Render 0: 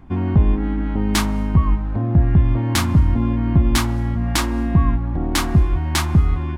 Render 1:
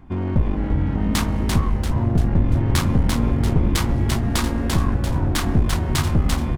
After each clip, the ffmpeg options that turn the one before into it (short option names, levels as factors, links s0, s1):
-filter_complex "[0:a]aeval=exprs='clip(val(0),-1,0.0794)':c=same,asplit=7[s0][s1][s2][s3][s4][s5][s6];[s1]adelay=342,afreqshift=-140,volume=0.668[s7];[s2]adelay=684,afreqshift=-280,volume=0.295[s8];[s3]adelay=1026,afreqshift=-420,volume=0.129[s9];[s4]adelay=1368,afreqshift=-560,volume=0.0569[s10];[s5]adelay=1710,afreqshift=-700,volume=0.0251[s11];[s6]adelay=2052,afreqshift=-840,volume=0.011[s12];[s0][s7][s8][s9][s10][s11][s12]amix=inputs=7:normalize=0,volume=0.841"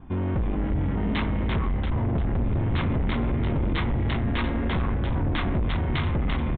-af "adynamicequalizer=threshold=0.00355:dfrequency=2100:dqfactor=7.7:tfrequency=2100:tqfactor=7.7:attack=5:release=100:ratio=0.375:range=3:mode=boostabove:tftype=bell,aresample=8000,asoftclip=type=tanh:threshold=0.0944,aresample=44100"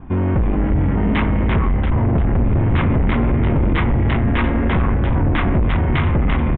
-af "lowpass=f=2800:w=0.5412,lowpass=f=2800:w=1.3066,volume=2.66"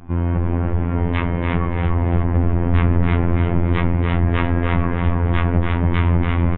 -filter_complex "[0:a]asplit=2[s0][s1];[s1]adelay=286,lowpass=f=2600:p=1,volume=0.708,asplit=2[s2][s3];[s3]adelay=286,lowpass=f=2600:p=1,volume=0.52,asplit=2[s4][s5];[s5]adelay=286,lowpass=f=2600:p=1,volume=0.52,asplit=2[s6][s7];[s7]adelay=286,lowpass=f=2600:p=1,volume=0.52,asplit=2[s8][s9];[s9]adelay=286,lowpass=f=2600:p=1,volume=0.52,asplit=2[s10][s11];[s11]adelay=286,lowpass=f=2600:p=1,volume=0.52,asplit=2[s12][s13];[s13]adelay=286,lowpass=f=2600:p=1,volume=0.52[s14];[s0][s2][s4][s6][s8][s10][s12][s14]amix=inputs=8:normalize=0,afftfilt=real='hypot(re,im)*cos(PI*b)':imag='0':win_size=2048:overlap=0.75"